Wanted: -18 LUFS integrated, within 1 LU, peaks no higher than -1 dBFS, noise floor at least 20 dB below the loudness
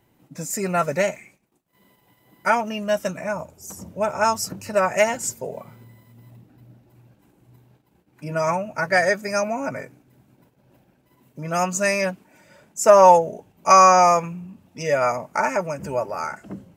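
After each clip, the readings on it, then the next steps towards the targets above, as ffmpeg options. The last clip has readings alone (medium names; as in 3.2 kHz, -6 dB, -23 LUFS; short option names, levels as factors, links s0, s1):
loudness -20.5 LUFS; peak level -1.5 dBFS; loudness target -18.0 LUFS
-> -af "volume=1.33,alimiter=limit=0.891:level=0:latency=1"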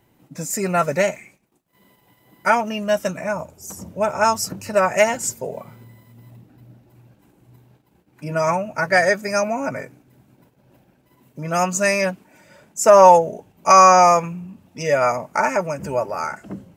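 loudness -18.0 LUFS; peak level -1.0 dBFS; noise floor -61 dBFS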